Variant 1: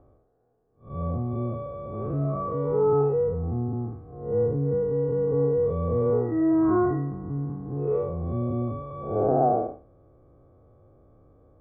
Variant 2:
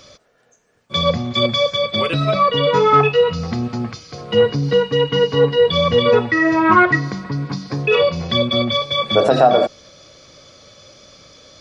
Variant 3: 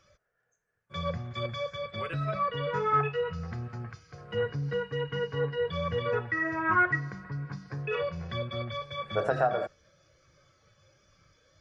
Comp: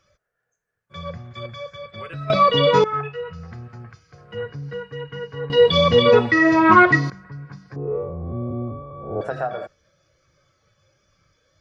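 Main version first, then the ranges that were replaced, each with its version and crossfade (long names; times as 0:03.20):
3
0:02.30–0:02.84: punch in from 2
0:05.50–0:07.10: punch in from 2
0:07.76–0:09.21: punch in from 1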